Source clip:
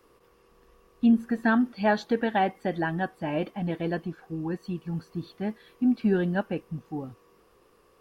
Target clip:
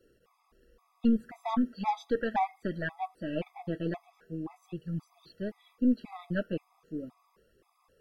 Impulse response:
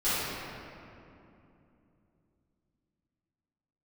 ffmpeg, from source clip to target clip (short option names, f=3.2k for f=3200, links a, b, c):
-af "aeval=exprs='0.251*(cos(1*acos(clip(val(0)/0.251,-1,1)))-cos(1*PI/2))+0.0251*(cos(4*acos(clip(val(0)/0.251,-1,1)))-cos(4*PI/2))':c=same,flanger=delay=0.2:depth=6.6:regen=-37:speed=0.39:shape=triangular,afftfilt=real='re*gt(sin(2*PI*1.9*pts/sr)*(1-2*mod(floor(b*sr/1024/660),2)),0)':imag='im*gt(sin(2*PI*1.9*pts/sr)*(1-2*mod(floor(b*sr/1024/660),2)),0)':win_size=1024:overlap=0.75"